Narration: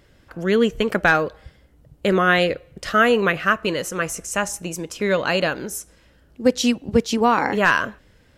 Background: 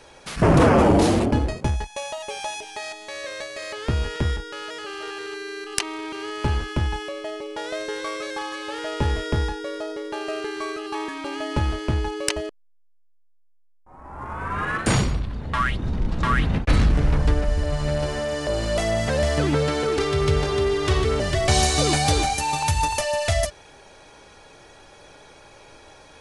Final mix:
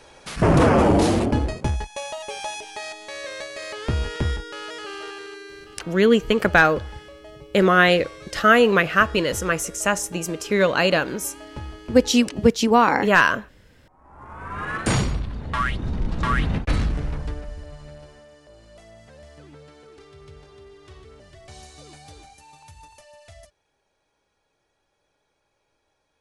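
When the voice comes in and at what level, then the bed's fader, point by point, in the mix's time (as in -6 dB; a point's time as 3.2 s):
5.50 s, +1.5 dB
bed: 4.95 s -0.5 dB
5.89 s -12 dB
13.93 s -12 dB
14.86 s -1 dB
16.52 s -1 dB
18.46 s -25 dB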